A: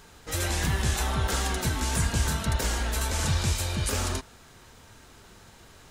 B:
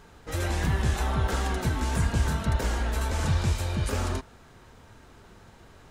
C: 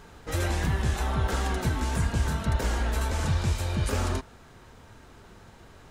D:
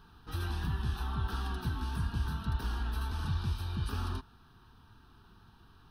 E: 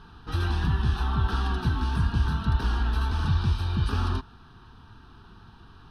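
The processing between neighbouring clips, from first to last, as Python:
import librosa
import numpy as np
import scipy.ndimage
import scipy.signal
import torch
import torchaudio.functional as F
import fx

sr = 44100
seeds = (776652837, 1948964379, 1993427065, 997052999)

y1 = fx.high_shelf(x, sr, hz=2700.0, db=-11.0)
y1 = F.gain(torch.from_numpy(y1), 1.5).numpy()
y2 = fx.rider(y1, sr, range_db=3, speed_s=0.5)
y3 = fx.fixed_phaser(y2, sr, hz=2100.0, stages=6)
y3 = F.gain(torch.from_numpy(y3), -6.5).numpy()
y4 = fx.air_absorb(y3, sr, metres=60.0)
y4 = F.gain(torch.from_numpy(y4), 9.0).numpy()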